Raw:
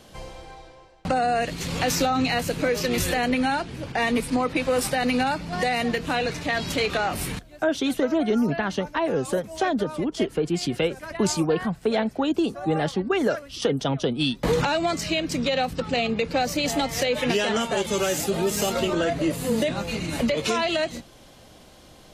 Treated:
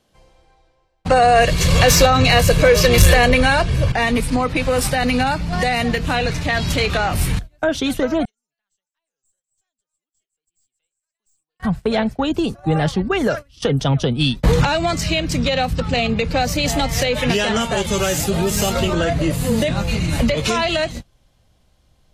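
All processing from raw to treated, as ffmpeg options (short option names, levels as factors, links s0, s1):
-filter_complex "[0:a]asettb=1/sr,asplit=3[s0][s1][s2];[s0]atrim=end=1.114[s3];[s1]atrim=start=1.11:end=3.92,asetpts=PTS-STARTPTS,afade=t=in:d=0.004:c=qsin,afade=t=out:st=2.806:d=0.004:c=qsin,acontrast=43,aecho=1:1:1.8:0.52,atrim=end_sample=123921[s4];[s2]atrim=start=3.916[s5];[s3][s4]acrossfade=d=0.004:c1=hsin:c2=qsin[s6];[s6][s5]acrossfade=d=0.004:c1=qsin:c2=hsin,asettb=1/sr,asplit=3[s7][s8][s9];[s7]atrim=end=8.254[s10];[s8]atrim=start=8.25:end=11.6,asetpts=PTS-STARTPTS,afade=t=in:d=0.004:c=qsin,afade=t=out:st=3.346:d=0.004:c=qsin,bandpass=f=7700:t=q:w=20,aeval=exprs='(tanh(316*val(0)+0.2)-tanh(0.2))/316':c=same[s11];[s9]atrim=start=11.596[s12];[s10][s11]acrossfade=d=0.004:c1=hsin:c2=qsin[s13];[s13][s12]acrossfade=d=0.004:c1=qsin:c2=hsin,asubboost=boost=4.5:cutoff=130,acontrast=76,agate=range=0.1:threshold=0.0631:ratio=16:detection=peak,volume=0.891"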